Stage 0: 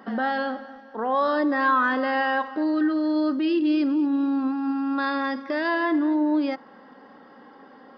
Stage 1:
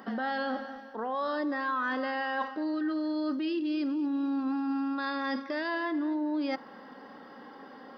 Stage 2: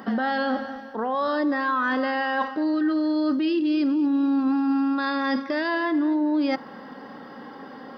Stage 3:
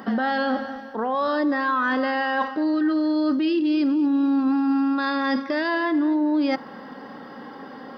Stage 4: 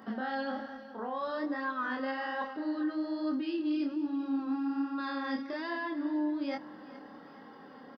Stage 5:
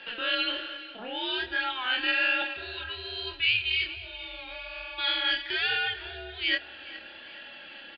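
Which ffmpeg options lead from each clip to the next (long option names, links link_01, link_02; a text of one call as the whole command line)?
ffmpeg -i in.wav -af "highshelf=frequency=4700:gain=8.5,areverse,acompressor=threshold=-29dB:ratio=6,areverse" out.wav
ffmpeg -i in.wav -af "equalizer=frequency=110:width_type=o:width=1.6:gain=8,volume=6.5dB" out.wav
ffmpeg -i in.wav -af "acontrast=52,volume=-4.5dB" out.wav
ffmpeg -i in.wav -af "flanger=delay=22.5:depth=7.4:speed=1.2,aecho=1:1:419|838|1257|1676:0.126|0.0567|0.0255|0.0115,volume=-9dB" out.wav
ffmpeg -i in.wav -af "aexciter=amount=14.2:drive=8.6:freq=2200,highpass=frequency=510:width_type=q:width=0.5412,highpass=frequency=510:width_type=q:width=1.307,lowpass=frequency=3400:width_type=q:width=0.5176,lowpass=frequency=3400:width_type=q:width=0.7071,lowpass=frequency=3400:width_type=q:width=1.932,afreqshift=-230" out.wav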